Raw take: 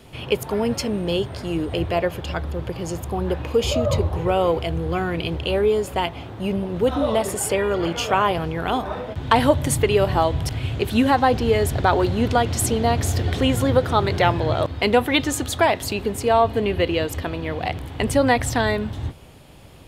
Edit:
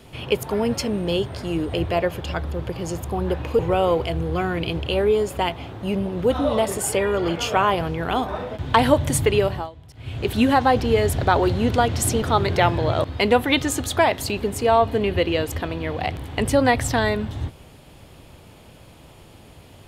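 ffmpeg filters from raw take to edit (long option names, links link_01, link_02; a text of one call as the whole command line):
ffmpeg -i in.wav -filter_complex "[0:a]asplit=5[link_01][link_02][link_03][link_04][link_05];[link_01]atrim=end=3.592[link_06];[link_02]atrim=start=4.158:end=10.27,asetpts=PTS-STARTPTS,afade=type=out:start_time=5.772:duration=0.34:silence=0.0891251[link_07];[link_03]atrim=start=10.27:end=10.52,asetpts=PTS-STARTPTS,volume=-21dB[link_08];[link_04]atrim=start=10.52:end=12.792,asetpts=PTS-STARTPTS,afade=type=in:duration=0.34:silence=0.0891251[link_09];[link_05]atrim=start=13.838[link_10];[link_07][link_08][link_09]concat=n=3:v=0:a=1[link_11];[link_06][link_11]acrossfade=duration=0.004:curve1=hsin:curve2=hsin[link_12];[link_12][link_10]acrossfade=duration=0.004:curve1=hsin:curve2=hsin" out.wav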